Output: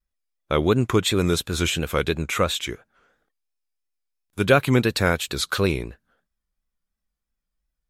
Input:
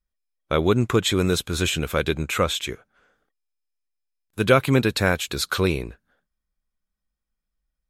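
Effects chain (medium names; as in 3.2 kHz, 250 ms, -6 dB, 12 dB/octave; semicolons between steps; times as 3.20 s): vibrato 2.9 Hz 91 cents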